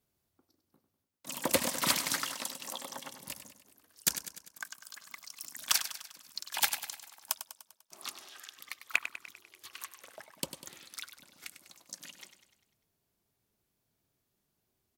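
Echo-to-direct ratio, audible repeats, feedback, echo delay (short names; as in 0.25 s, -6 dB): -9.5 dB, 5, 55%, 99 ms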